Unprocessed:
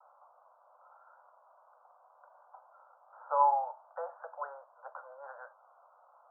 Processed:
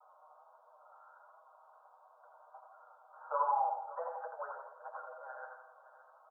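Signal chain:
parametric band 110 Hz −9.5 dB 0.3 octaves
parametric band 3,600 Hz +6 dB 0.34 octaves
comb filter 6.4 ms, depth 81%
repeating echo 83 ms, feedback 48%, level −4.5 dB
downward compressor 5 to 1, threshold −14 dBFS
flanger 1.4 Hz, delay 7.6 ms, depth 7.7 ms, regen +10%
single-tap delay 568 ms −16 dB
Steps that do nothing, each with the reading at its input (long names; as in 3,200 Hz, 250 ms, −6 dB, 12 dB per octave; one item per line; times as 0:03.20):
parametric band 110 Hz: nothing at its input below 430 Hz
parametric band 3,600 Hz: nothing at its input above 1,500 Hz
downward compressor, threshold −14 dBFS: peak of its input −17.5 dBFS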